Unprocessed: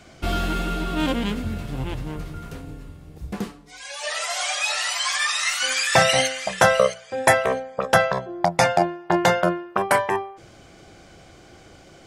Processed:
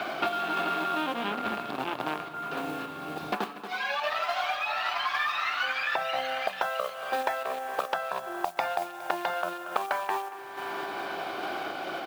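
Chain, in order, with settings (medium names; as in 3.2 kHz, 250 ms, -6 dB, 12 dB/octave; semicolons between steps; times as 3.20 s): in parallel at -5.5 dB: bit crusher 4-bit; on the sum: cabinet simulation 380–3500 Hz, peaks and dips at 490 Hz -7 dB, 740 Hz +4 dB, 1.3 kHz +3 dB, 2 kHz -8 dB, 3.1 kHz -4 dB; spring tank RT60 2.9 s, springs 38 ms, chirp 65 ms, DRR 19.5 dB; modulation noise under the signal 26 dB; compression 6:1, threshold -21 dBFS, peak gain reduction 13 dB; on a send: delay 231 ms -17 dB; on the sum: random-step tremolo; bass shelf 500 Hz -4 dB; three bands compressed up and down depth 100%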